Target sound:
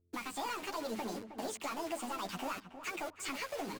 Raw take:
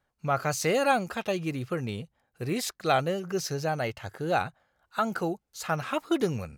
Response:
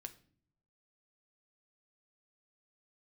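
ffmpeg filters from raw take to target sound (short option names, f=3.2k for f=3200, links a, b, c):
-filter_complex "[0:a]highpass=f=110:w=0.5412,highpass=f=110:w=1.3066,bandreject=f=60:t=h:w=6,bandreject=f=120:t=h:w=6,bandreject=f=180:t=h:w=6,bandreject=f=240:t=h:w=6,bandreject=f=300:t=h:w=6,acompressor=threshold=-40dB:ratio=10,aresample=11025,asoftclip=type=tanh:threshold=-39.5dB,aresample=44100,acrusher=bits=8:mix=0:aa=0.000001,aeval=exprs='val(0)+0.0001*(sin(2*PI*50*n/s)+sin(2*PI*2*50*n/s)/2+sin(2*PI*3*50*n/s)/3+sin(2*PI*4*50*n/s)/4+sin(2*PI*5*50*n/s)/5)':c=same,asplit=3[a][b][c];[b]asetrate=52444,aresample=44100,atempo=0.840896,volume=-16dB[d];[c]asetrate=66075,aresample=44100,atempo=0.66742,volume=-18dB[e];[a][d][e]amix=inputs=3:normalize=0,flanger=delay=15.5:depth=3.7:speed=0.59,asetrate=76440,aresample=44100,asplit=2[f][g];[g]adelay=316,lowpass=f=1.5k:p=1,volume=-10dB,asplit=2[h][i];[i]adelay=316,lowpass=f=1.5k:p=1,volume=0.3,asplit=2[j][k];[k]adelay=316,lowpass=f=1.5k:p=1,volume=0.3[l];[h][j][l]amix=inputs=3:normalize=0[m];[f][m]amix=inputs=2:normalize=0,volume=9.5dB"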